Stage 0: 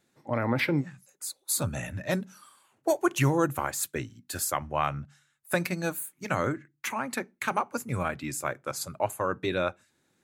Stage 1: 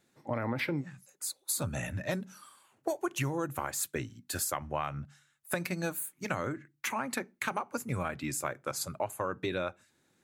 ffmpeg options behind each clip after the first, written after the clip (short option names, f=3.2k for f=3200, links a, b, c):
-af "acompressor=threshold=-29dB:ratio=6"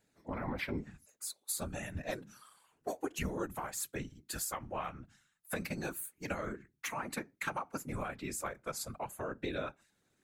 -af "flanger=delay=0.4:depth=3.4:regen=-69:speed=0.32:shape=sinusoidal,afftfilt=real='hypot(re,im)*cos(2*PI*random(0))':imag='hypot(re,im)*sin(2*PI*random(1))':win_size=512:overlap=0.75,volume=5.5dB"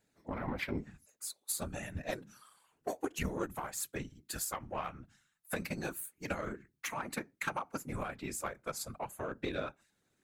-af "aeval=exprs='0.0841*(cos(1*acos(clip(val(0)/0.0841,-1,1)))-cos(1*PI/2))+0.00335*(cos(7*acos(clip(val(0)/0.0841,-1,1)))-cos(7*PI/2))':c=same,volume=1.5dB"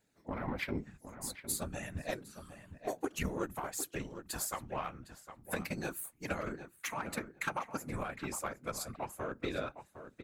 -filter_complex "[0:a]asplit=2[a][b];[b]adelay=759,lowpass=f=2.5k:p=1,volume=-10.5dB,asplit=2[c][d];[d]adelay=759,lowpass=f=2.5k:p=1,volume=0.17[e];[a][c][e]amix=inputs=3:normalize=0"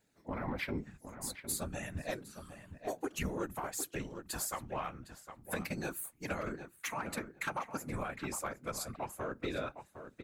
-af "asoftclip=type=tanh:threshold=-27.5dB,volume=1dB"